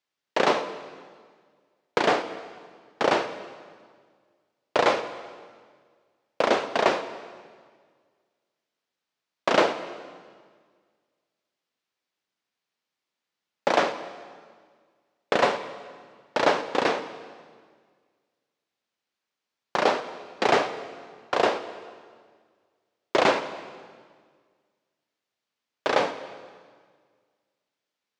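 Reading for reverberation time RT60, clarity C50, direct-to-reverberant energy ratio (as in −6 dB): 1.7 s, 11.5 dB, 10.5 dB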